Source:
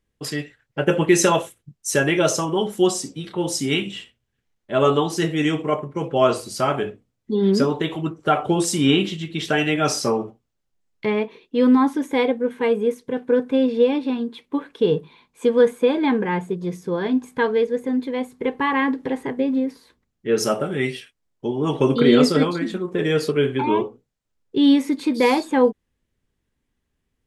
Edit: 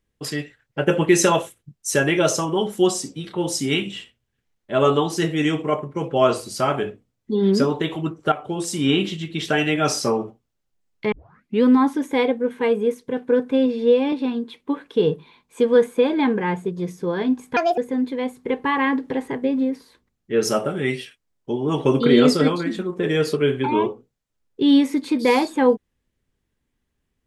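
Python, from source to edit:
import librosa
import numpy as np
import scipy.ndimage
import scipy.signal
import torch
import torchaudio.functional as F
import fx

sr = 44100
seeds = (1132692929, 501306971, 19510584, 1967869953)

y = fx.edit(x, sr, fx.fade_in_from(start_s=8.32, length_s=0.8, floor_db=-12.5),
    fx.tape_start(start_s=11.12, length_s=0.51),
    fx.stretch_span(start_s=13.66, length_s=0.31, factor=1.5),
    fx.speed_span(start_s=17.41, length_s=0.32, speed=1.51), tone=tone)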